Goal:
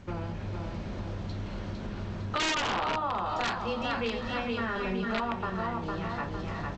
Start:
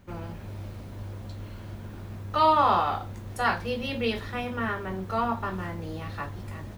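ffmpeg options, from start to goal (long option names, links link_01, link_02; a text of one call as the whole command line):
ffmpeg -i in.wav -filter_complex "[0:a]lowpass=frequency=6100:width=0.5412,lowpass=frequency=6100:width=1.3066,aecho=1:1:455|910|1365|1820|2275:0.562|0.236|0.0992|0.0417|0.0175,aeval=exprs='(mod(6.68*val(0)+1,2)-1)/6.68':channel_layout=same,asettb=1/sr,asplit=3[link_01][link_02][link_03];[link_01]atrim=end=2.604[link_04];[link_02]atrim=start=2.6:end=3.26,asetpts=PTS-STARTPTS,afade=type=in:duration=0.004:curve=qsin,afade=type=out:start_time=0.656:duration=0.004:curve=qsin,highshelf=frequency=3800:gain=-10[link_05];[link_03]atrim=start=3.256[link_06];[link_04][link_05]acrossfade=duration=0.004:curve1=hsin:curve2=qsin[link_07];[link_07][link_06]acrossfade=duration=0.004:curve1=qsin:curve2=hsin,asettb=1/sr,asplit=3[link_08][link_09][link_10];[link_08]atrim=end=4.754[link_11];[link_09]atrim=start=4.75:end=5.2,asetpts=PTS-STARTPTS,afade=type=in:duration=0.004:curve=qsin,afade=type=out:start_time=0.446:duration=0.004:curve=qsin,aecho=1:1:4.9:0.9,atrim=end_sample=19845[link_12];[link_10]atrim=start=5.196[link_13];[link_11][link_12]acrossfade=duration=0.004:curve1=hsin:curve2=qsin[link_14];[link_14][link_13]acrossfade=duration=0.004:curve1=qsin:curve2=hsin,acompressor=threshold=-39dB:ratio=2.5,volume=6dB" -ar 16000 -c:a g722 out.g722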